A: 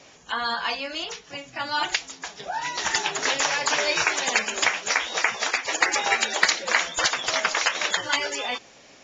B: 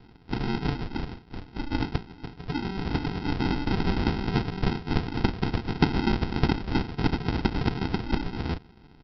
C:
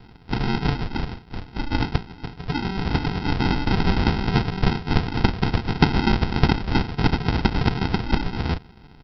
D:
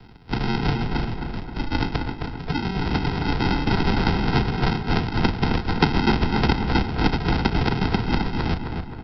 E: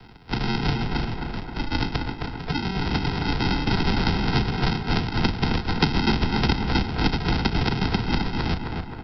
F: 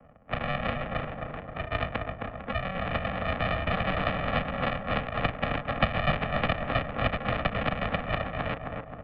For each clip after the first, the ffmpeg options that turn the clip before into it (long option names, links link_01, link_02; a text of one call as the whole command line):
ffmpeg -i in.wav -af "bandreject=frequency=1600:width=5.5,aresample=11025,acrusher=samples=19:mix=1:aa=0.000001,aresample=44100" out.wav
ffmpeg -i in.wav -af "equalizer=frequency=310:width_type=o:width=0.91:gain=-4.5,volume=6.5dB" out.wav
ffmpeg -i in.wav -filter_complex "[0:a]acrossover=split=210|550|1600[link_01][link_02][link_03][link_04];[link_01]asoftclip=type=tanh:threshold=-17.5dB[link_05];[link_05][link_02][link_03][link_04]amix=inputs=4:normalize=0,asplit=2[link_06][link_07];[link_07]adelay=264,lowpass=frequency=2700:poles=1,volume=-5dB,asplit=2[link_08][link_09];[link_09]adelay=264,lowpass=frequency=2700:poles=1,volume=0.52,asplit=2[link_10][link_11];[link_11]adelay=264,lowpass=frequency=2700:poles=1,volume=0.52,asplit=2[link_12][link_13];[link_13]adelay=264,lowpass=frequency=2700:poles=1,volume=0.52,asplit=2[link_14][link_15];[link_15]adelay=264,lowpass=frequency=2700:poles=1,volume=0.52,asplit=2[link_16][link_17];[link_17]adelay=264,lowpass=frequency=2700:poles=1,volume=0.52,asplit=2[link_18][link_19];[link_19]adelay=264,lowpass=frequency=2700:poles=1,volume=0.52[link_20];[link_06][link_08][link_10][link_12][link_14][link_16][link_18][link_20]amix=inputs=8:normalize=0" out.wav
ffmpeg -i in.wav -filter_complex "[0:a]lowshelf=frequency=490:gain=-4.5,acrossover=split=300|3000[link_01][link_02][link_03];[link_02]acompressor=threshold=-37dB:ratio=1.5[link_04];[link_01][link_04][link_03]amix=inputs=3:normalize=0,volume=3dB" out.wav
ffmpeg -i in.wav -af "adynamicsmooth=sensitivity=6.5:basefreq=770,highpass=frequency=290:width_type=q:width=0.5412,highpass=frequency=290:width_type=q:width=1.307,lowpass=frequency=3100:width_type=q:width=0.5176,lowpass=frequency=3100:width_type=q:width=0.7071,lowpass=frequency=3100:width_type=q:width=1.932,afreqshift=-210" out.wav